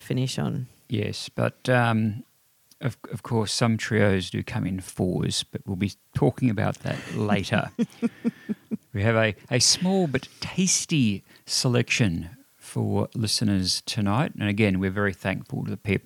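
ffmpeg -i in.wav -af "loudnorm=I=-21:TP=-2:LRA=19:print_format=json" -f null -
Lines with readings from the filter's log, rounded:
"input_i" : "-25.2",
"input_tp" : "-5.6",
"input_lra" : "3.2",
"input_thresh" : "-35.4",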